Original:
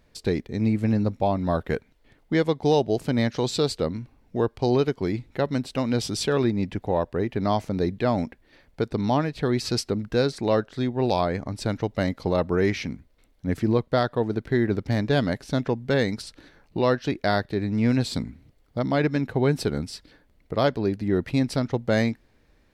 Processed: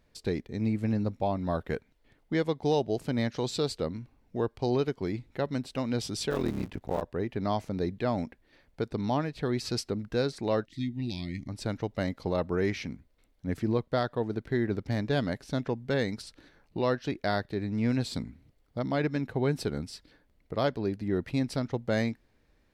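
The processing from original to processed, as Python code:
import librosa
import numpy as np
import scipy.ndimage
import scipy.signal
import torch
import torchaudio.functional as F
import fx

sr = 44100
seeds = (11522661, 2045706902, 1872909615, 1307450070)

y = fx.cycle_switch(x, sr, every=3, mode='muted', at=(6.3, 7.01), fade=0.02)
y = fx.spec_box(y, sr, start_s=10.65, length_s=0.84, low_hz=360.0, high_hz=1800.0, gain_db=-25)
y = y * 10.0 ** (-6.0 / 20.0)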